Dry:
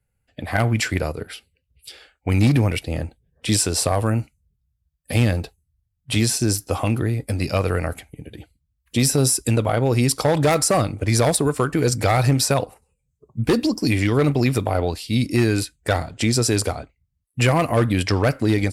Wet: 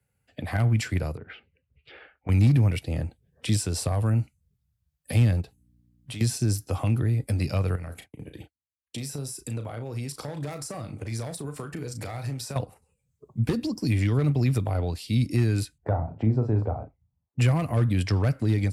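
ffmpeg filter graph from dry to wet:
-filter_complex "[0:a]asettb=1/sr,asplit=3[a][b][c];[a]atrim=end=1.174[d];[b]atrim=start=1.17:end=2.29,asetpts=PTS-STARTPTS,afade=t=in:d=0.004:c=qsin,afade=t=out:st=1.116:d=0.004:c=qsin,lowpass=f=2.4k:w=0.5412,lowpass=f=2.4k:w=1.3066,acompressor=threshold=-33dB:ratio=6:attack=3.2:release=140:knee=1:detection=peak[e];[c]atrim=start=2.286[f];[d][e]acrossfade=d=0.004:c1=hsin:c2=qsin[g];[g][f]acrossfade=d=0.004:c1=qsin:c2=hsin,asettb=1/sr,asplit=3[h][i][j];[h]atrim=end=5.414[k];[i]atrim=start=5.41:end=6.21,asetpts=PTS-STARTPTS,afade=t=in:d=0.004:c=qsin,afade=t=out:st=0.796:d=0.004:c=qsin,acompressor=threshold=-39dB:ratio=2.5:attack=3.2:release=140:knee=1:detection=peak,aeval=exprs='val(0)+0.001*(sin(2*PI*60*n/s)+sin(2*PI*2*60*n/s)/2+sin(2*PI*3*60*n/s)/3+sin(2*PI*4*60*n/s)/4+sin(2*PI*5*60*n/s)/5)':c=same[l];[j]atrim=start=6.206[m];[k][l]acrossfade=d=0.004:c1=hsin:c2=qsin[n];[n][m]acrossfade=d=0.004:c1=qsin:c2=hsin,asettb=1/sr,asplit=3[o][p][q];[o]atrim=end=7.754[r];[p]atrim=start=7.75:end=12.56,asetpts=PTS-STARTPTS,afade=t=in:d=0.004:c=qsin,afade=t=out:st=4.806:d=0.004:c=qsin,agate=range=-33dB:threshold=-34dB:ratio=3:release=100:detection=peak,acompressor=threshold=-33dB:ratio=3:attack=3.2:release=140:knee=1:detection=peak,asplit=2[s][t];[t]adelay=35,volume=-9dB[u];[s][u]amix=inputs=2:normalize=0,atrim=end_sample=212121[v];[q]atrim=start=12.556[w];[r][v]acrossfade=d=0.004:c1=hsin:c2=qsin[x];[x][w]acrossfade=d=0.004:c1=qsin:c2=hsin,asettb=1/sr,asplit=3[y][z][aa];[y]atrim=end=15.784[ab];[z]atrim=start=15.78:end=17.39,asetpts=PTS-STARTPTS,afade=t=in:d=0.004:c=qsin,afade=t=out:st=1.606:d=0.004:c=qsin,lowpass=f=850:t=q:w=2.2,asplit=2[ac][ad];[ad]adelay=37,volume=-7.5dB[ae];[ac][ae]amix=inputs=2:normalize=0,atrim=end_sample=71001[af];[aa]atrim=start=17.386[ag];[ab][af]acrossfade=d=0.004:c1=hsin:c2=qsin[ah];[ah][ag]acrossfade=d=0.004:c1=qsin:c2=hsin,acrossover=split=170[ai][aj];[aj]acompressor=threshold=-41dB:ratio=2[ak];[ai][ak]amix=inputs=2:normalize=0,highpass=83,volume=1.5dB"

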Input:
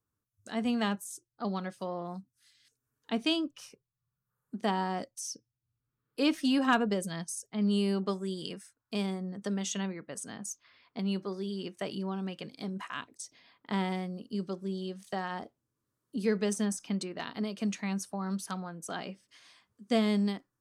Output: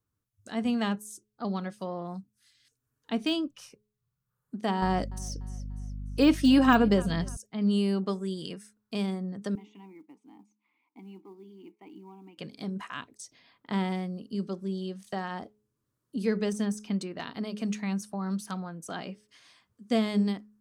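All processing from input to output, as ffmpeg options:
-filter_complex "[0:a]asettb=1/sr,asplit=3[a][b][c];[a]atrim=end=4.824[d];[b]atrim=start=4.82:end=7.37,asetpts=PTS-STARTPTS,afade=t=in:d=0.004:c=qsin,afade=t=out:st=2.546:d=0.004:c=qsin,acontrast=34,aeval=exprs='val(0)+0.01*(sin(2*PI*50*n/s)+sin(2*PI*2*50*n/s)/2+sin(2*PI*3*50*n/s)/3+sin(2*PI*4*50*n/s)/4+sin(2*PI*5*50*n/s)/5)':c=same,aecho=1:1:294|588|882:0.075|0.0315|0.0132,atrim=end_sample=112455[e];[c]atrim=start=7.366[f];[d][e]acrossfade=d=0.004:c1=hsin:c2=qsin[g];[g][f]acrossfade=d=0.004:c1=qsin:c2=hsin,asettb=1/sr,asplit=3[h][i][j];[h]atrim=end=9.554[k];[i]atrim=start=9.55:end=12.38,asetpts=PTS-STARTPTS,afade=t=in:d=0.004:c=qsin,afade=t=out:st=2.826:d=0.004:c=qsin,asplit=2[l][m];[m]highpass=f=720:p=1,volume=12dB,asoftclip=type=tanh:threshold=-21.5dB[n];[l][n]amix=inputs=2:normalize=0,lowpass=f=1.3k:p=1,volume=-6dB,asplit=3[o][p][q];[o]bandpass=f=300:t=q:w=8,volume=0dB[r];[p]bandpass=f=870:t=q:w=8,volume=-6dB[s];[q]bandpass=f=2.24k:t=q:w=8,volume=-9dB[t];[r][s][t]amix=inputs=3:normalize=0,acrusher=bits=8:mode=log:mix=0:aa=0.000001[u];[j]atrim=start=12.376[v];[k][u]acrossfade=d=0.004:c1=hsin:c2=qsin[w];[w][v]acrossfade=d=0.004:c1=qsin:c2=hsin,bandreject=f=211.1:t=h:w=4,bandreject=f=422.2:t=h:w=4,deesser=0.8,lowshelf=f=210:g=5.5"

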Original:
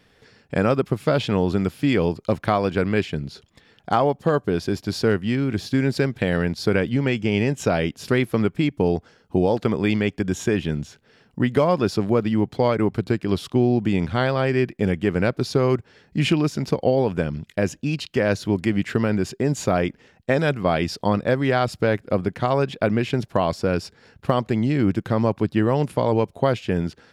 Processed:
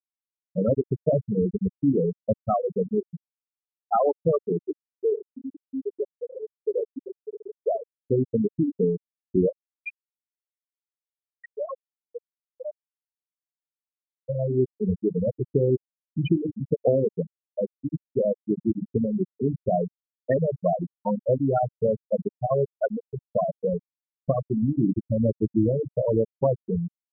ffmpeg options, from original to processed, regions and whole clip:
-filter_complex "[0:a]asettb=1/sr,asplit=3[a][b][c];[a]atrim=end=4.784[d];[b]atrim=start=4.78:end=8,asetpts=PTS-STARTPTS,afade=t=in:d=0.004:c=qsin,afade=t=out:st=3.216:d=0.004:c=qsin,highpass=350,asplit=2[e][f];[f]adelay=84,lowpass=f=5k:p=1,volume=-7dB,asplit=2[g][h];[h]adelay=84,lowpass=f=5k:p=1,volume=0.29,asplit=2[i][j];[j]adelay=84,lowpass=f=5k:p=1,volume=0.29,asplit=2[k][l];[l]adelay=84,lowpass=f=5k:p=1,volume=0.29[m];[e][g][i][k][m]amix=inputs=5:normalize=0,atrim=end_sample=142002[n];[c]atrim=start=7.996[o];[d][n]acrossfade=d=0.004:c1=hsin:c2=qsin[p];[p][o]acrossfade=d=0.004:c1=qsin:c2=hsin,asettb=1/sr,asplit=3[q][r][s];[q]atrim=end=9.494[t];[r]atrim=start=9.49:end=14.29,asetpts=PTS-STARTPTS,afade=t=in:d=0.004:c=qsin,afade=t=out:st=4.796:d=0.004:c=qsin,acontrast=43,bandpass=f=2.4k:t=q:w=0.99,aeval=exprs='clip(val(0),-1,0.15)':c=same[u];[s]atrim=start=14.286[v];[t][u]acrossfade=d=0.004:c1=hsin:c2=qsin[w];[w][v]acrossfade=d=0.004:c1=qsin:c2=hsin,asettb=1/sr,asplit=3[x][y][z];[x]atrim=end=22.644[aa];[y]atrim=start=22.64:end=23.32,asetpts=PTS-STARTPTS,afade=t=in:d=0.004:c=qsin,afade=t=out:st=0.676:d=0.004:c=qsin,lowpass=2.1k,tiltshelf=f=670:g=-5[ab];[z]atrim=start=23.316[ac];[aa][ab]acrossfade=d=0.004:c1=hsin:c2=qsin[ad];[ad][ac]acrossfade=d=0.004:c1=qsin:c2=hsin,bandreject=f=50:t=h:w=6,bandreject=f=100:t=h:w=6,bandreject=f=150:t=h:w=6,bandreject=f=200:t=h:w=6,bandreject=f=250:t=h:w=6,bandreject=f=300:t=h:w=6,bandreject=f=350:t=h:w=6,bandreject=f=400:t=h:w=6,afftfilt=real='re*gte(hypot(re,im),0.501)':imag='im*gte(hypot(re,im),0.501)':win_size=1024:overlap=0.75"

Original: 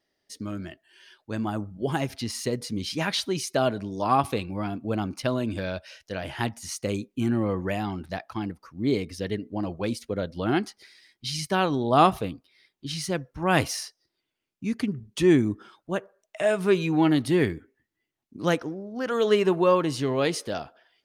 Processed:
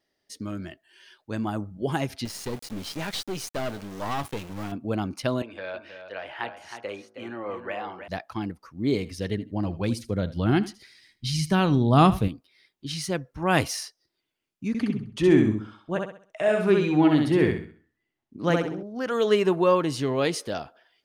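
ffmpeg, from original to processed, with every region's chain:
-filter_complex "[0:a]asettb=1/sr,asplit=3[a][b][c];[a]atrim=end=2.254[d];[b]atrim=start=2.25:end=4.72,asetpts=PTS-STARTPTS,afade=t=in:d=0.004:c=qsin,afade=t=out:st=2.466:d=0.004:c=qsin,aeval=exprs='val(0)*gte(abs(val(0)),0.015)':c=same,aeval=exprs='(tanh(20*val(0)+0.6)-tanh(0.6))/20':c=same[e];[c]atrim=start=4.716[f];[d][e]acrossfade=d=0.004:c1=hsin:c2=qsin[g];[g][f]acrossfade=d=0.004:c1=qsin:c2=hsin,asettb=1/sr,asplit=3[h][i][j];[h]atrim=end=5.424[k];[i]atrim=start=5.42:end=8.08,asetpts=PTS-STARTPTS,afade=t=in:d=0.004:c=qsin,afade=t=out:st=2.656:d=0.004:c=qsin,acrossover=split=430 3300:gain=0.0891 1 0.0891[l][m][n];[l][m][n]amix=inputs=3:normalize=0,bandreject=f=54.36:t=h:w=4,bandreject=f=108.72:t=h:w=4,bandreject=f=163.08:t=h:w=4,bandreject=f=217.44:t=h:w=4,bandreject=f=271.8:t=h:w=4,bandreject=f=326.16:t=h:w=4,bandreject=f=380.52:t=h:w=4,bandreject=f=434.88:t=h:w=4,bandreject=f=489.24:t=h:w=4,bandreject=f=543.6:t=h:w=4,bandreject=f=597.96:t=h:w=4,bandreject=f=652.32:t=h:w=4,bandreject=f=706.68:t=h:w=4,bandreject=f=761.04:t=h:w=4,bandreject=f=815.4:t=h:w=4,bandreject=f=869.76:t=h:w=4,bandreject=f=924.12:t=h:w=4,bandreject=f=978.48:t=h:w=4,bandreject=f=1.03284k:t=h:w=4,bandreject=f=1.0872k:t=h:w=4,bandreject=f=1.14156k:t=h:w=4,bandreject=f=1.19592k:t=h:w=4,bandreject=f=1.25028k:t=h:w=4,bandreject=f=1.30464k:t=h:w=4,bandreject=f=1.359k:t=h:w=4,bandreject=f=1.41336k:t=h:w=4,bandreject=f=1.46772k:t=h:w=4,bandreject=f=1.52208k:t=h:w=4,bandreject=f=1.57644k:t=h:w=4,bandreject=f=1.6308k:t=h:w=4,bandreject=f=1.68516k:t=h:w=4,aecho=1:1:317:0.355,atrim=end_sample=117306[o];[j]atrim=start=8.076[p];[k][o]acrossfade=d=0.004:c1=hsin:c2=qsin[q];[q][p]acrossfade=d=0.004:c1=qsin:c2=hsin,asettb=1/sr,asplit=3[r][s][t];[r]atrim=end=8.854[u];[s]atrim=start=8.85:end=12.28,asetpts=PTS-STARTPTS,afade=t=in:d=0.004:c=qsin,afade=t=out:st=3.426:d=0.004:c=qsin,asubboost=boost=5:cutoff=240,aecho=1:1:78|156:0.141|0.0212,atrim=end_sample=151263[v];[t]atrim=start=12.276[w];[u][v]acrossfade=d=0.004:c1=hsin:c2=qsin[x];[x][w]acrossfade=d=0.004:c1=qsin:c2=hsin,asettb=1/sr,asplit=3[y][z][aa];[y]atrim=end=14.684[ab];[z]atrim=start=14.68:end=18.83,asetpts=PTS-STARTPTS,afade=t=in:d=0.004:c=qsin,afade=t=out:st=4.146:d=0.004:c=qsin,lowpass=f=3.2k:p=1,aecho=1:1:65|130|195|260|325:0.668|0.234|0.0819|0.0287|0.01,atrim=end_sample=183015[ac];[aa]atrim=start=18.826[ad];[ab][ac]acrossfade=d=0.004:c1=hsin:c2=qsin[ae];[ae][ad]acrossfade=d=0.004:c1=qsin:c2=hsin"

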